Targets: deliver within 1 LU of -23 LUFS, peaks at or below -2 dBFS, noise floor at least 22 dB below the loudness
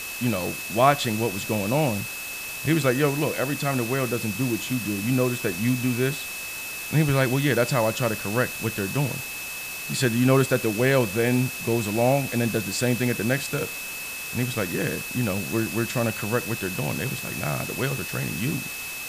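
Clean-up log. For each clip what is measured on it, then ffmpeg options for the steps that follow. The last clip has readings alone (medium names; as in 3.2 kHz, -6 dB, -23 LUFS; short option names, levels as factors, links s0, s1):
steady tone 2.6 kHz; tone level -34 dBFS; noise floor -34 dBFS; noise floor target -47 dBFS; loudness -24.5 LUFS; peak level -5.5 dBFS; loudness target -23.0 LUFS
-> -af "bandreject=f=2600:w=30"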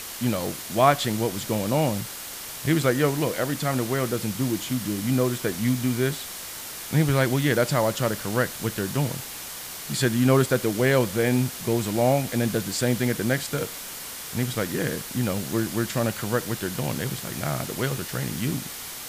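steady tone not found; noise floor -37 dBFS; noise floor target -47 dBFS
-> -af "afftdn=nr=10:nf=-37"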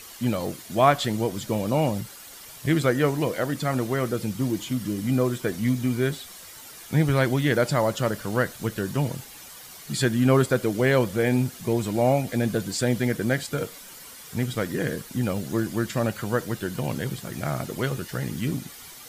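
noise floor -44 dBFS; noise floor target -48 dBFS
-> -af "afftdn=nr=6:nf=-44"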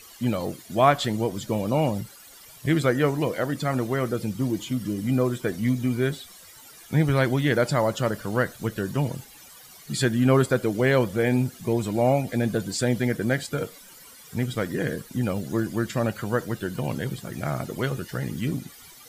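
noise floor -48 dBFS; loudness -25.5 LUFS; peak level -6.0 dBFS; loudness target -23.0 LUFS
-> -af "volume=1.33"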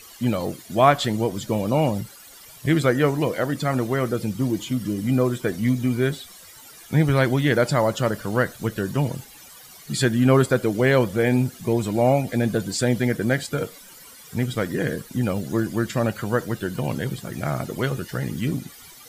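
loudness -23.0 LUFS; peak level -3.5 dBFS; noise floor -46 dBFS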